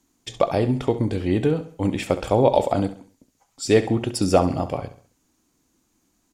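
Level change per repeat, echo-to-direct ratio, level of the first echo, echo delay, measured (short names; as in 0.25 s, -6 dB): -8.0 dB, -12.0 dB, -13.0 dB, 67 ms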